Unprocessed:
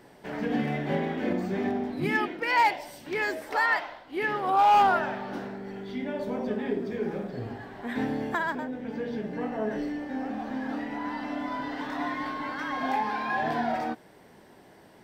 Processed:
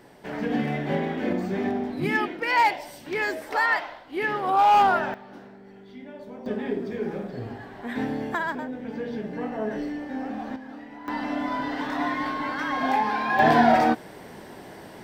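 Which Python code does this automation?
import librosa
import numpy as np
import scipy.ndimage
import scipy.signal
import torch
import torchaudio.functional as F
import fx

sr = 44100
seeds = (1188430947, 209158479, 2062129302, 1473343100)

y = fx.gain(x, sr, db=fx.steps((0.0, 2.0), (5.14, -9.0), (6.46, 1.0), (10.56, -8.0), (11.08, 4.5), (13.39, 11.0)))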